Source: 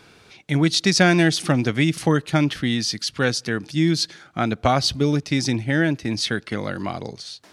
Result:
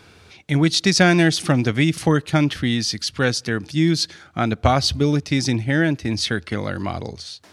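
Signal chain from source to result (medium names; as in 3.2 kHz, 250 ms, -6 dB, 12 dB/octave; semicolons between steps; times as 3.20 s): peaking EQ 82 Hz +14 dB 0.39 oct; trim +1 dB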